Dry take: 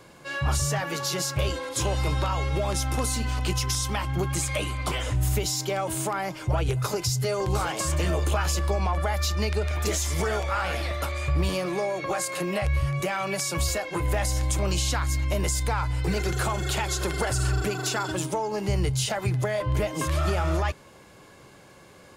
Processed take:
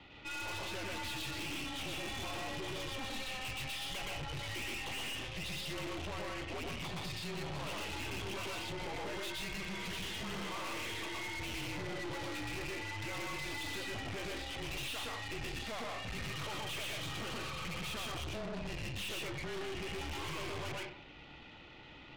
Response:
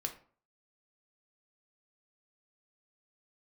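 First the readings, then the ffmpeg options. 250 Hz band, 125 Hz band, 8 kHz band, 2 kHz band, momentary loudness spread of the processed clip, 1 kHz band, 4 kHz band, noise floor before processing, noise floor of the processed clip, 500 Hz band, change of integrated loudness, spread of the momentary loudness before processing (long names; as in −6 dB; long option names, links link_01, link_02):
−12.0 dB, −19.5 dB, −17.5 dB, −8.0 dB, 2 LU, −13.5 dB, −7.0 dB, −51 dBFS, −53 dBFS, −15.0 dB, −13.0 dB, 3 LU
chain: -filter_complex "[0:a]highpass=frequency=190:width_type=q:width=0.5412,highpass=frequency=190:width_type=q:width=1.307,lowpass=frequency=3500:width_type=q:width=0.5176,lowpass=frequency=3500:width_type=q:width=0.7071,lowpass=frequency=3500:width_type=q:width=1.932,afreqshift=-240,aexciter=amount=4.5:drive=4.9:freq=2300,asplit=2[link_01][link_02];[1:a]atrim=start_sample=2205,adelay=120[link_03];[link_02][link_03]afir=irnorm=-1:irlink=0,volume=0dB[link_04];[link_01][link_04]amix=inputs=2:normalize=0,aeval=exprs='(tanh(56.2*val(0)+0.5)-tanh(0.5))/56.2':channel_layout=same,volume=-4.5dB"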